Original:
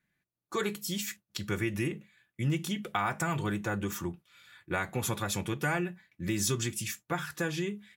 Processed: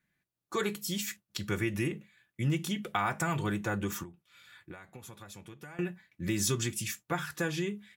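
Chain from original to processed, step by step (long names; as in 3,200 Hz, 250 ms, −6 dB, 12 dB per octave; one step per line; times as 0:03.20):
0:04.03–0:05.79: downward compressor 20 to 1, threshold −44 dBFS, peak gain reduction 19 dB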